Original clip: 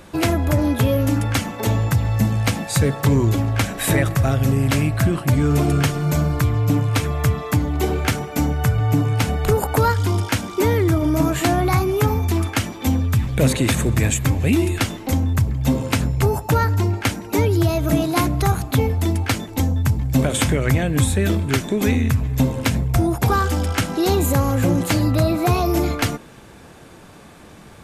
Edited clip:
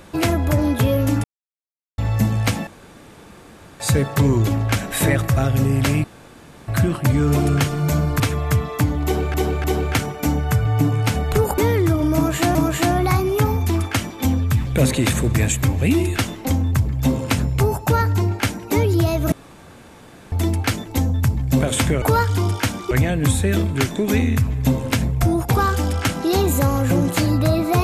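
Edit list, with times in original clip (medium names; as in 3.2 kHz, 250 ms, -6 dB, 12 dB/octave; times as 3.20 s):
1.24–1.98 s: mute
2.67 s: insert room tone 1.13 s
4.91 s: insert room tone 0.64 s
6.43–6.93 s: delete
7.77–8.07 s: loop, 3 plays
9.71–10.60 s: move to 20.64 s
11.17–11.57 s: loop, 2 plays
17.94–18.94 s: room tone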